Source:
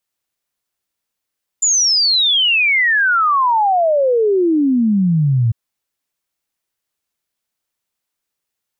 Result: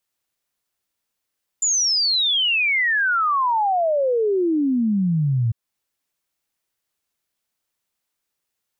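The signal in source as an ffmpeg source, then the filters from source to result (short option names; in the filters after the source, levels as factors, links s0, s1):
-f lavfi -i "aevalsrc='0.282*clip(min(t,3.9-t)/0.01,0,1)*sin(2*PI*7200*3.9/log(110/7200)*(exp(log(110/7200)*t/3.9)-1))':d=3.9:s=44100"
-af "alimiter=limit=0.15:level=0:latency=1:release=274"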